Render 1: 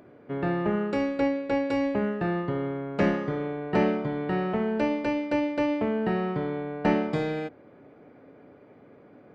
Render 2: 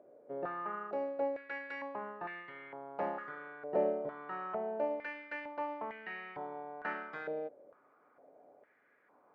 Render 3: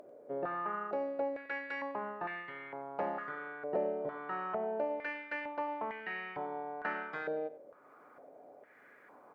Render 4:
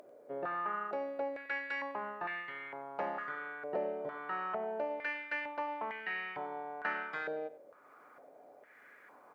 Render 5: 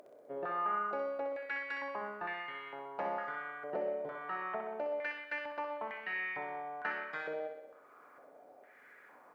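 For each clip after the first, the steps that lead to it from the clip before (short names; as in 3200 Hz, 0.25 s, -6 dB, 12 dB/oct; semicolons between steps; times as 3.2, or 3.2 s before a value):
stepped band-pass 2.2 Hz 570–2100 Hz
upward compressor, threshold -54 dBFS; echo 93 ms -16.5 dB; compressor 2.5:1, threshold -36 dBFS, peak gain reduction 7 dB; gain +3.5 dB
tilt shelf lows -4.5 dB
thinning echo 63 ms, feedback 62%, high-pass 200 Hz, level -6.5 dB; gain -1.5 dB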